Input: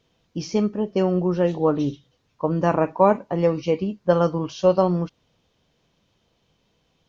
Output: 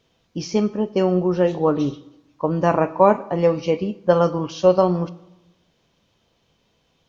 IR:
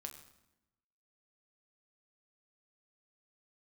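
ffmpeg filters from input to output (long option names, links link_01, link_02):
-filter_complex "[0:a]asplit=2[link_01][link_02];[1:a]atrim=start_sample=2205,lowshelf=frequency=160:gain=-11.5[link_03];[link_02][link_03]afir=irnorm=-1:irlink=0,volume=-0.5dB[link_04];[link_01][link_04]amix=inputs=2:normalize=0,volume=-1dB"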